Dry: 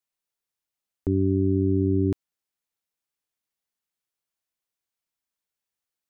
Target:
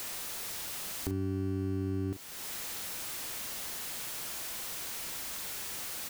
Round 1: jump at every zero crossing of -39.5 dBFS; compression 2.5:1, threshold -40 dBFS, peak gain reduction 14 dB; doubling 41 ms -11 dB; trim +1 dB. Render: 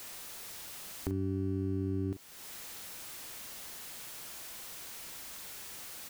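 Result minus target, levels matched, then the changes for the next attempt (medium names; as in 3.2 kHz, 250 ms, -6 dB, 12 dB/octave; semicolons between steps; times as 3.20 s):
jump at every zero crossing: distortion -7 dB
change: jump at every zero crossing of -31.5 dBFS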